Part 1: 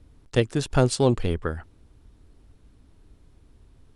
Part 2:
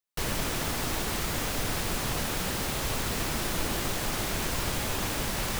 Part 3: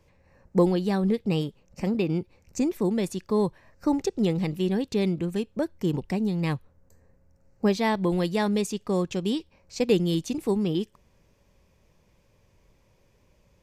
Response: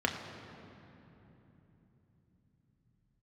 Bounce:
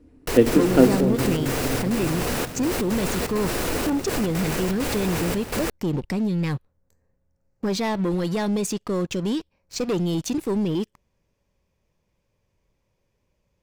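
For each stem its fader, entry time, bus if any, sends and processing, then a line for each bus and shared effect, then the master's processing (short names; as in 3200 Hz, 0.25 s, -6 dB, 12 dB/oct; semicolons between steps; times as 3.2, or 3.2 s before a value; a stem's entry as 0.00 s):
0.83 s -9.5 dB -> 1.08 s -21.5 dB, 0.00 s, no bus, send -7.5 dB, bell 310 Hz +14 dB 1.7 oct
-7.0 dB, 0.10 s, bus A, send -7.5 dB, bell 430 Hz +6.5 dB 0.93 oct; step gate "xxx.xxxxxx..xx.x" 166 bpm -12 dB
-3.5 dB, 0.00 s, bus A, no send, dry
bus A: 0.0 dB, sample leveller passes 3; limiter -18.5 dBFS, peak gain reduction 7 dB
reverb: on, RT60 3.5 s, pre-delay 3 ms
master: dry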